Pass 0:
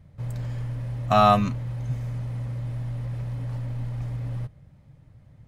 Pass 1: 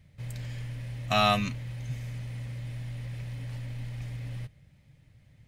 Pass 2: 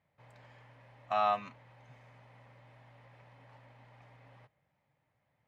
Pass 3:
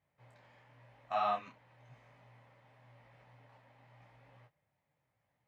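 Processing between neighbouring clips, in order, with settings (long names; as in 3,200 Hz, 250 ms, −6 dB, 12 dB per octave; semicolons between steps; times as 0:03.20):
high shelf with overshoot 1,600 Hz +9 dB, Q 1.5; level −6.5 dB
resonant band-pass 910 Hz, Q 2.1
micro pitch shift up and down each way 33 cents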